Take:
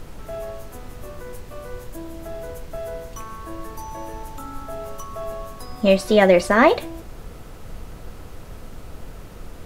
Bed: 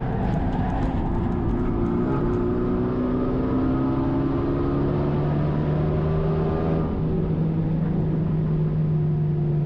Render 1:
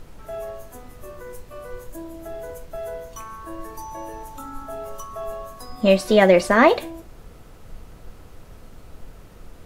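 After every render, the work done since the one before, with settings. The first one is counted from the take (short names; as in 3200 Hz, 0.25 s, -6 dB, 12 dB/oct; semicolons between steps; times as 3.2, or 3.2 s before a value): noise print and reduce 6 dB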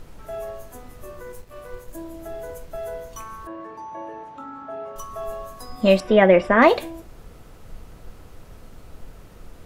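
1.32–1.94 G.711 law mismatch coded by A; 3.47–4.96 BPF 180–2500 Hz; 6–6.62 polynomial smoothing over 25 samples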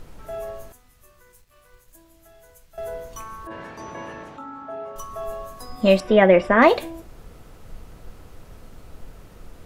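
0.72–2.78 passive tone stack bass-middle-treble 5-5-5; 3.5–4.36 spectral limiter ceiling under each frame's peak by 21 dB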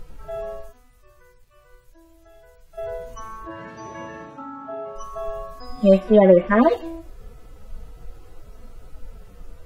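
median-filter separation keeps harmonic; low shelf 490 Hz +4 dB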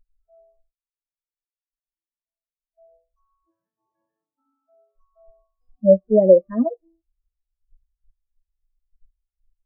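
spectral expander 2.5:1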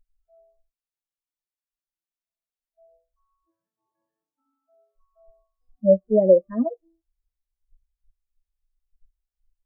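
gain -3 dB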